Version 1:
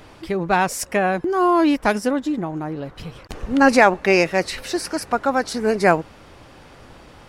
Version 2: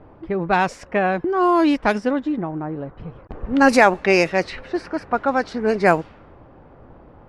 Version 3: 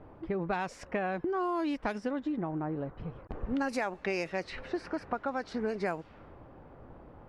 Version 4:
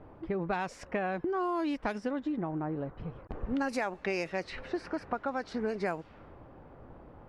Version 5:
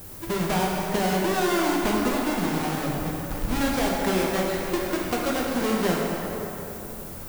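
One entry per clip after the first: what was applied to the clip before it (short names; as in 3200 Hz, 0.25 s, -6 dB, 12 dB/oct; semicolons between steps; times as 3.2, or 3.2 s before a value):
low-pass opened by the level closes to 880 Hz, open at -10.5 dBFS
compressor 6:1, threshold -24 dBFS, peak gain reduction 15 dB; gain -5.5 dB
nothing audible
half-waves squared off; added noise violet -45 dBFS; plate-style reverb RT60 3.5 s, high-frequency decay 0.55×, pre-delay 0 ms, DRR -3 dB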